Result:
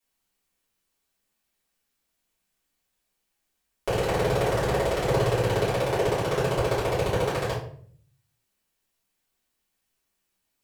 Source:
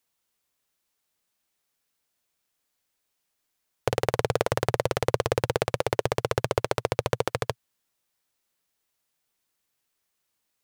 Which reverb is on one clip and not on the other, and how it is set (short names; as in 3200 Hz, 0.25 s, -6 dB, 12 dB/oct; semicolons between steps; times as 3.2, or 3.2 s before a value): shoebox room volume 60 m³, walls mixed, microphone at 2.9 m; gain -11 dB